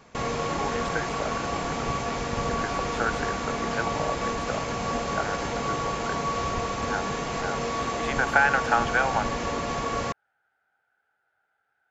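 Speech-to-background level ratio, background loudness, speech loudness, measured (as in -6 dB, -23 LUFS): -1.0 dB, -29.0 LUFS, -30.0 LUFS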